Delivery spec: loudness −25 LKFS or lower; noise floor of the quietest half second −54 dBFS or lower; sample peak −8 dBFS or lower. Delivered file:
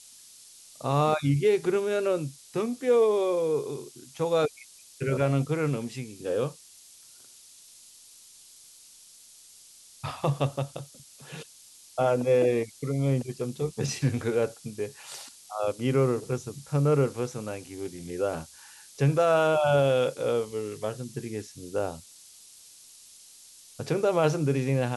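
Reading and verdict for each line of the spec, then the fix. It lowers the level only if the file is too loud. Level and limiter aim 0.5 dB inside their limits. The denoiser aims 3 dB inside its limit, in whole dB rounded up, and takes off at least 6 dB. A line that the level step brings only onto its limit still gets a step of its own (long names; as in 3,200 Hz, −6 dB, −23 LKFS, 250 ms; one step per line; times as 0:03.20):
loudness −27.5 LKFS: in spec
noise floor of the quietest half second −53 dBFS: out of spec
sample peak −11.5 dBFS: in spec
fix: broadband denoise 6 dB, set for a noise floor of −53 dBFS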